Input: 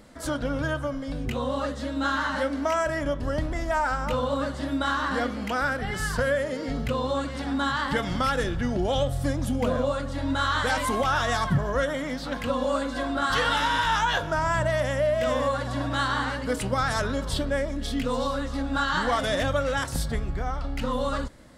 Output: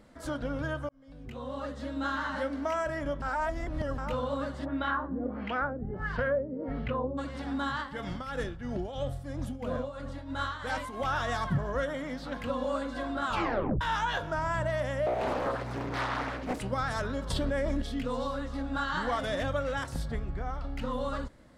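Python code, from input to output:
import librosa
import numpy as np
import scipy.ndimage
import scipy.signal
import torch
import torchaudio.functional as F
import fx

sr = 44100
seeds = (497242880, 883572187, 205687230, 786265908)

y = fx.filter_lfo_lowpass(x, sr, shape='sine', hz=1.5, low_hz=300.0, high_hz=2900.0, q=1.5, at=(4.64, 7.17), fade=0.02)
y = fx.tremolo_shape(y, sr, shape='triangle', hz=3.0, depth_pct=75, at=(7.81, 11.01), fade=0.02)
y = fx.doppler_dist(y, sr, depth_ms=1.0, at=(15.06, 16.6))
y = fx.env_flatten(y, sr, amount_pct=100, at=(17.3, 17.82))
y = fx.high_shelf(y, sr, hz=5100.0, db=-4.5, at=(19.94, 20.49))
y = fx.edit(y, sr, fx.fade_in_span(start_s=0.89, length_s=0.98),
    fx.reverse_span(start_s=3.22, length_s=0.76),
    fx.tape_stop(start_s=13.25, length_s=0.56), tone=tone)
y = fx.high_shelf(y, sr, hz=3800.0, db=-7.0)
y = F.gain(torch.from_numpy(y), -5.5).numpy()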